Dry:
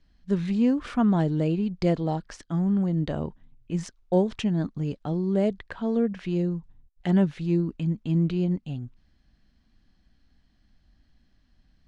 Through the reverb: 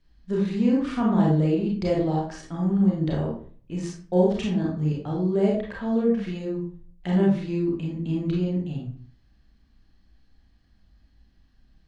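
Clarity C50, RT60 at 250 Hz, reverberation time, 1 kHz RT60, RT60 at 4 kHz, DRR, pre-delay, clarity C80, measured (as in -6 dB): 3.0 dB, 0.55 s, 0.45 s, 0.45 s, 0.30 s, -3.5 dB, 28 ms, 8.0 dB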